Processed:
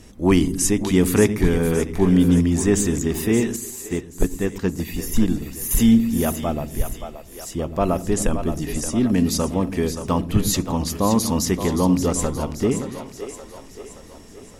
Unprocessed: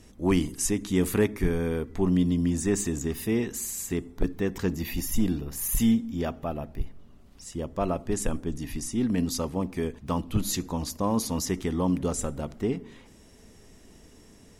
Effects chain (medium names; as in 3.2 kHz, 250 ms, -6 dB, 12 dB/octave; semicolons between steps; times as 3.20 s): two-band feedback delay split 360 Hz, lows 113 ms, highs 574 ms, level -9 dB; 3.56–5.71 s: upward expansion 1.5:1, over -36 dBFS; trim +7 dB